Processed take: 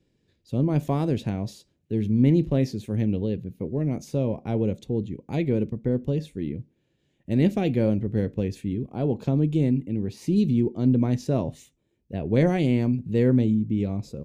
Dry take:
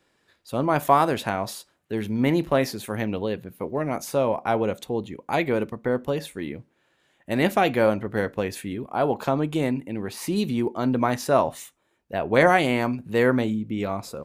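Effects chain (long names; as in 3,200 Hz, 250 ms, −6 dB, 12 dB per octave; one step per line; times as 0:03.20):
drawn EQ curve 140 Hz 0 dB, 290 Hz −6 dB, 460 Hz −10 dB, 690 Hz −20 dB, 1,300 Hz −28 dB, 2,400 Hz −17 dB, 6,500 Hz −15 dB, 9,600 Hz −23 dB, 14,000 Hz −25 dB
level +7.5 dB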